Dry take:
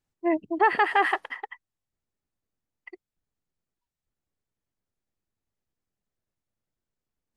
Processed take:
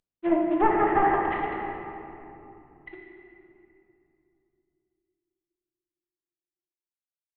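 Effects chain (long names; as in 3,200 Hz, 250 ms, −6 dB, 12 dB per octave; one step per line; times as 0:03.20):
variable-slope delta modulation 16 kbit/s
treble cut that deepens with the level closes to 1,300 Hz, closed at −23 dBFS
rectangular room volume 130 cubic metres, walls hard, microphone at 0.49 metres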